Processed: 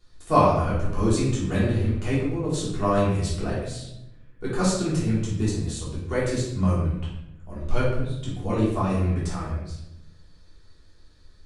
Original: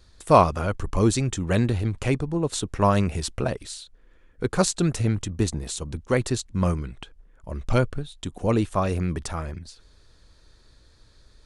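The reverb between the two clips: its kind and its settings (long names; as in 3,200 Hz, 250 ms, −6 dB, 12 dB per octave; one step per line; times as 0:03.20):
rectangular room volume 280 cubic metres, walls mixed, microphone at 3.3 metres
level −11.5 dB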